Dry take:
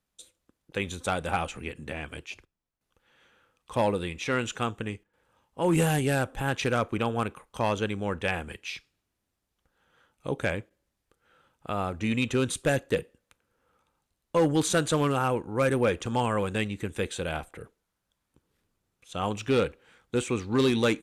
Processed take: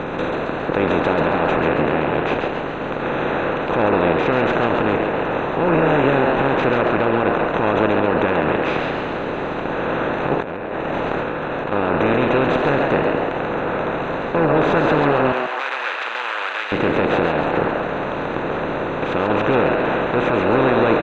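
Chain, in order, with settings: spectral levelling over time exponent 0.2; 15.32–16.72 s: high-pass 1.4 kHz 12 dB/octave; spectral gate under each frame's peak -25 dB strong; Bessel low-pass 2.3 kHz, order 4; peak limiter -10 dBFS, peak gain reduction 7.5 dB; frequency-shifting echo 136 ms, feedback 50%, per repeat +120 Hz, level -4.5 dB; 10.40–11.72 s: compressor with a negative ratio -26 dBFS, ratio -1; trim +1.5 dB

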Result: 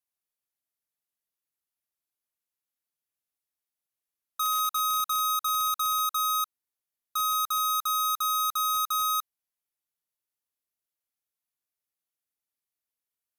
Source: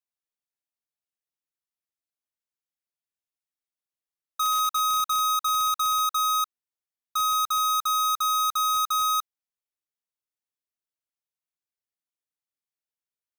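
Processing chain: peaking EQ 12 kHz +9 dB 0.48 oct; peak limiter -23 dBFS, peak gain reduction 3.5 dB

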